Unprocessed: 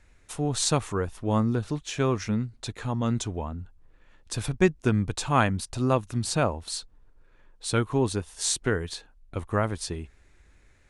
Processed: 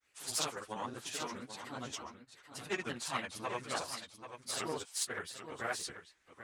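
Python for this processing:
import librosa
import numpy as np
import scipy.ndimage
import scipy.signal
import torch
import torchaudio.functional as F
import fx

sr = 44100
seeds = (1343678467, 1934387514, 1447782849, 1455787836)

p1 = fx.granulator(x, sr, seeds[0], grain_ms=157.0, per_s=20.0, spray_ms=100.0, spread_st=3)
p2 = fx.stretch_vocoder_free(p1, sr, factor=0.59)
p3 = fx.cheby_harmonics(p2, sr, harmonics=(4,), levels_db=(-18,), full_scale_db=-16.5)
p4 = fx.highpass(p3, sr, hz=1300.0, slope=6)
p5 = p4 + fx.echo_single(p4, sr, ms=786, db=-10.0, dry=0)
y = p5 * 10.0 ** (1.0 / 20.0)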